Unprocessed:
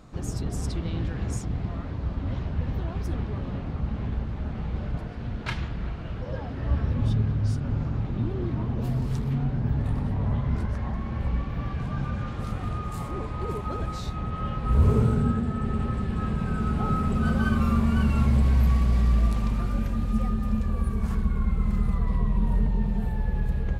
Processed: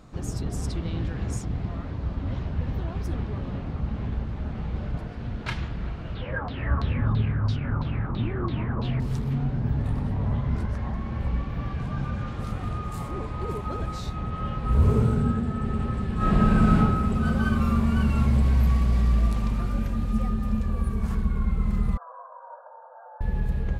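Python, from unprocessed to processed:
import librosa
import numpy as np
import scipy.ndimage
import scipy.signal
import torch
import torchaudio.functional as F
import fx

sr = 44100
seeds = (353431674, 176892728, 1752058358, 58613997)

y = fx.filter_lfo_lowpass(x, sr, shape='saw_down', hz=3.0, low_hz=990.0, high_hz=4200.0, q=7.7, at=(6.15, 9.0))
y = fx.reverb_throw(y, sr, start_s=16.16, length_s=0.62, rt60_s=1.0, drr_db=-8.0)
y = fx.brickwall_bandpass(y, sr, low_hz=490.0, high_hz=1700.0, at=(21.97, 23.21))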